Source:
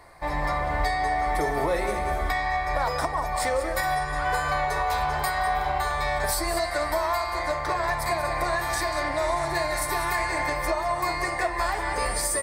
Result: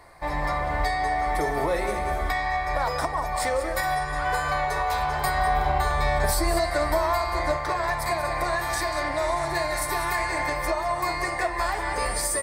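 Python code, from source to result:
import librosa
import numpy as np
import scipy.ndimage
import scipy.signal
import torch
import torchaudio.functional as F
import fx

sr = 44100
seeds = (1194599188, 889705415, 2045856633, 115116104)

y = fx.low_shelf(x, sr, hz=460.0, db=7.5, at=(5.24, 7.57))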